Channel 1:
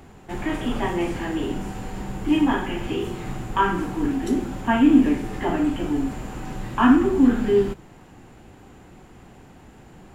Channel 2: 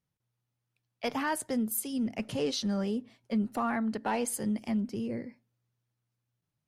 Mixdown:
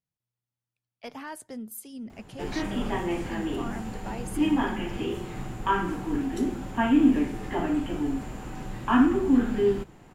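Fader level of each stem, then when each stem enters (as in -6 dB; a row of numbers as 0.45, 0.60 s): -4.5, -8.0 dB; 2.10, 0.00 s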